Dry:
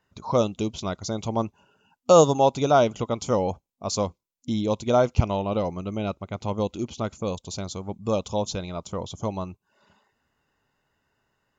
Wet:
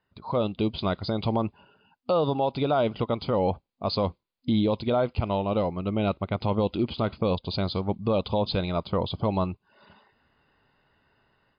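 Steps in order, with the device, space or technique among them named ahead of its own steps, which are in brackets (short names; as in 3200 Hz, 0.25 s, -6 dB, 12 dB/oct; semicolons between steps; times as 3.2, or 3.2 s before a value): low-bitrate web radio (AGC gain up to 11 dB; limiter -11 dBFS, peak gain reduction 10 dB; gain -4 dB; MP3 48 kbps 11025 Hz)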